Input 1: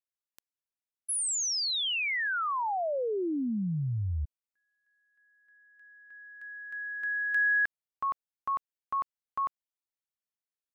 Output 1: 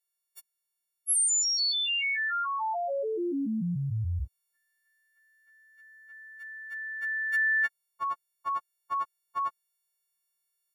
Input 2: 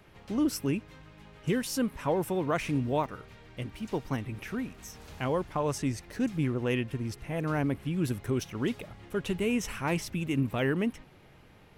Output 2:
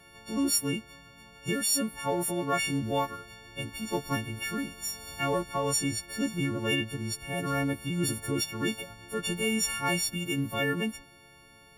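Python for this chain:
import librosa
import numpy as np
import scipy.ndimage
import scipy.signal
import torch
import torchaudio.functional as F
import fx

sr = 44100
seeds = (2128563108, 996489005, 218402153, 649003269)

p1 = fx.freq_snap(x, sr, grid_st=4)
p2 = fx.rider(p1, sr, range_db=4, speed_s=2.0)
p3 = p1 + (p2 * 10.0 ** (-0.5 / 20.0))
y = p3 * 10.0 ** (-7.0 / 20.0)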